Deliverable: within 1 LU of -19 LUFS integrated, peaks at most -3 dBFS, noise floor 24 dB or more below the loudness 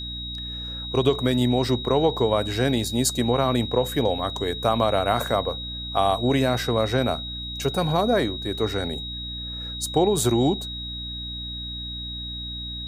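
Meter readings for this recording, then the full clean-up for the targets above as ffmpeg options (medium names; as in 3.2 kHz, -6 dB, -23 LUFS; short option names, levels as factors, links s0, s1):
hum 60 Hz; highest harmonic 300 Hz; hum level -34 dBFS; steady tone 3.8 kHz; tone level -32 dBFS; loudness -24.0 LUFS; peak level -5.5 dBFS; loudness target -19.0 LUFS
-> -af "bandreject=f=60:t=h:w=4,bandreject=f=120:t=h:w=4,bandreject=f=180:t=h:w=4,bandreject=f=240:t=h:w=4,bandreject=f=300:t=h:w=4"
-af "bandreject=f=3800:w=30"
-af "volume=1.78,alimiter=limit=0.708:level=0:latency=1"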